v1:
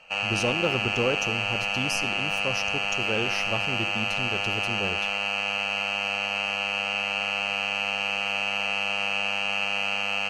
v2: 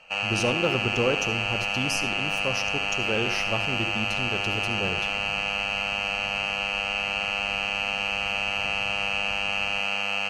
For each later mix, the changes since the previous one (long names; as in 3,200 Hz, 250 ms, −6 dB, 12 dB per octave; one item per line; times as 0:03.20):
speech: send +7.5 dB
second sound: unmuted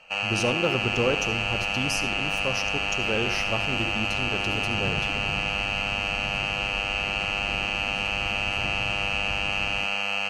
second sound +10.0 dB